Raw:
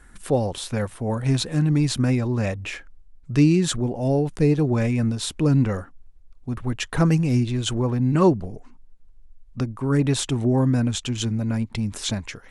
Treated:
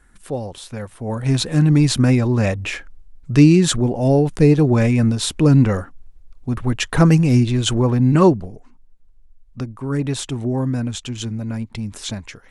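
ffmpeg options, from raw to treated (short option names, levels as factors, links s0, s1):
-af "volume=2,afade=t=in:st=0.87:d=0.75:silence=0.298538,afade=t=out:st=8.13:d=0.4:silence=0.421697"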